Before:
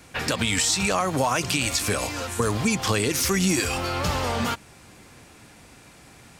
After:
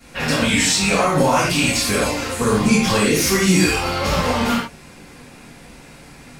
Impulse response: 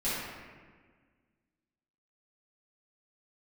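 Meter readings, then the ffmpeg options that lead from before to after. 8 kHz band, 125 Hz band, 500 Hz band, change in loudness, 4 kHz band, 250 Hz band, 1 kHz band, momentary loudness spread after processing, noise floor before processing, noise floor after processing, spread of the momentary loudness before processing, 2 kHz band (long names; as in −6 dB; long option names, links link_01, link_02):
+4.0 dB, +5.5 dB, +7.5 dB, +6.5 dB, +5.5 dB, +8.5 dB, +6.0 dB, 6 LU, −50 dBFS, −43 dBFS, 6 LU, +7.0 dB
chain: -filter_complex "[0:a]volume=13dB,asoftclip=hard,volume=-13dB[link_01];[1:a]atrim=start_sample=2205,atrim=end_sample=6174[link_02];[link_01][link_02]afir=irnorm=-1:irlink=0"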